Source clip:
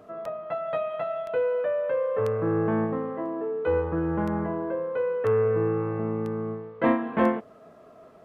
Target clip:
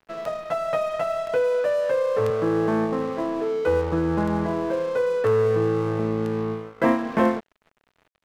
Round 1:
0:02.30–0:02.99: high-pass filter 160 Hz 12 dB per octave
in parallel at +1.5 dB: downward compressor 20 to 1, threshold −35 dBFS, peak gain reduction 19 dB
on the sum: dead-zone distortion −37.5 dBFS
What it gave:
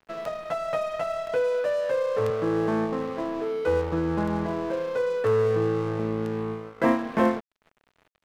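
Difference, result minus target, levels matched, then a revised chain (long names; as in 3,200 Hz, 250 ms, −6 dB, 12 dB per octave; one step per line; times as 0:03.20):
downward compressor: peak gain reduction +8 dB
0:02.30–0:02.99: high-pass filter 160 Hz 12 dB per octave
in parallel at +1.5 dB: downward compressor 20 to 1, threshold −26.5 dBFS, peak gain reduction 11 dB
on the sum: dead-zone distortion −37.5 dBFS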